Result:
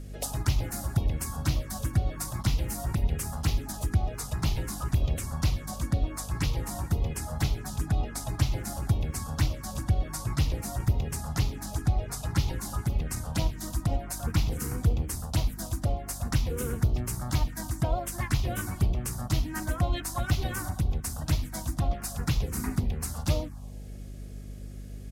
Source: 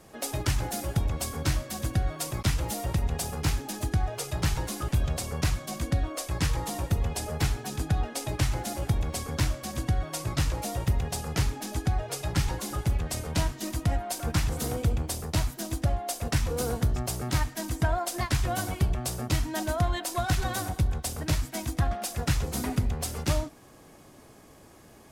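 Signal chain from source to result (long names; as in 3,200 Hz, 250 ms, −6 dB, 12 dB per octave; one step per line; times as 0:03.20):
phaser swept by the level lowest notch 150 Hz, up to 1,700 Hz, full sweep at −21.5 dBFS
mains hum 50 Hz, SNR 12 dB
pitch-shifted copies added −4 semitones −9 dB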